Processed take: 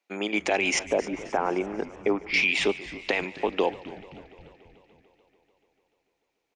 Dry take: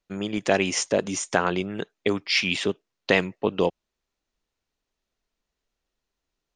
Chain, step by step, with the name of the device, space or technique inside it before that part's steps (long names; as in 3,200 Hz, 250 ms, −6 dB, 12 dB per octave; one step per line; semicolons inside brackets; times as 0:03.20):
0:00.79–0:02.34: low-pass filter 1,200 Hz 12 dB per octave
laptop speaker (high-pass filter 270 Hz 24 dB per octave; parametric band 810 Hz +8 dB 0.45 octaves; parametric band 2,300 Hz +11 dB 0.39 octaves; brickwall limiter −14 dBFS, peak gain reduction 13 dB)
low-shelf EQ 130 Hz +11 dB
echo with shifted repeats 265 ms, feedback 53%, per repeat −120 Hz, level −17.5 dB
feedback echo with a swinging delay time 146 ms, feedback 78%, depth 178 cents, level −21.5 dB